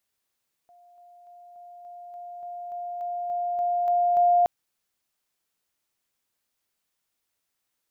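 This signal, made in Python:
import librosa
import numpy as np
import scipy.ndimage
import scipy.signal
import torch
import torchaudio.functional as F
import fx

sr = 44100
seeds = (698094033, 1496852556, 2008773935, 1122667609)

y = fx.level_ladder(sr, hz=704.0, from_db=-52.0, step_db=3.0, steps=13, dwell_s=0.29, gap_s=0.0)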